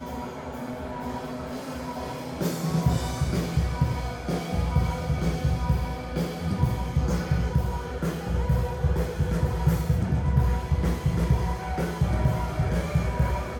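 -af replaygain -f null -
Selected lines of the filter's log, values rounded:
track_gain = +10.4 dB
track_peak = 0.216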